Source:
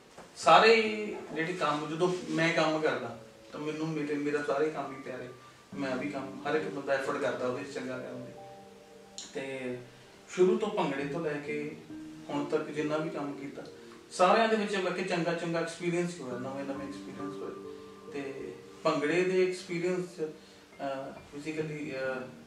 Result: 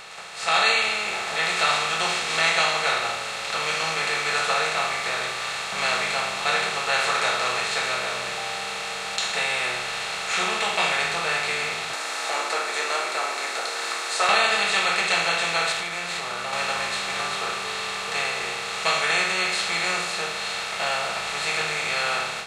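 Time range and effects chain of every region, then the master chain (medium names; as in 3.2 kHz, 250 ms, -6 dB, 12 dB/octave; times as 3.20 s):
11.93–14.29 s: steep high-pass 240 Hz 96 dB/octave + peaking EQ 3 kHz -14.5 dB 0.83 oct + tape noise reduction on one side only encoder only
15.72–16.53 s: CVSD coder 64 kbps + treble shelf 5.7 kHz -12 dB + compression 4:1, threshold -43 dBFS
whole clip: spectral levelling over time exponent 0.4; amplifier tone stack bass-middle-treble 10-0-10; level rider gain up to 11.5 dB; trim -2.5 dB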